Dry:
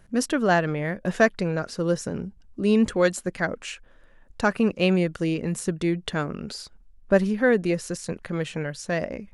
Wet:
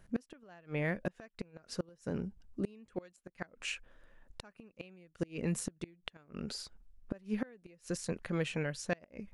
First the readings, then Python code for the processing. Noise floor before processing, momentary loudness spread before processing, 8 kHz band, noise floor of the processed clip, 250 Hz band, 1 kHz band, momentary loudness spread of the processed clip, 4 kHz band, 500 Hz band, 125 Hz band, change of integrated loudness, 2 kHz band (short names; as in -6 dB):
-53 dBFS, 13 LU, -10.0 dB, -72 dBFS, -15.0 dB, -20.5 dB, 16 LU, -11.0 dB, -17.5 dB, -12.0 dB, -15.0 dB, -15.5 dB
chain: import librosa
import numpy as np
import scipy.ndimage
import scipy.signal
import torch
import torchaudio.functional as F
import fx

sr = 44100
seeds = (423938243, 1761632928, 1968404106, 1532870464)

y = fx.dynamic_eq(x, sr, hz=2500.0, q=4.1, threshold_db=-49.0, ratio=4.0, max_db=6)
y = fx.gate_flip(y, sr, shuts_db=-16.0, range_db=-30)
y = y * 10.0 ** (-6.0 / 20.0)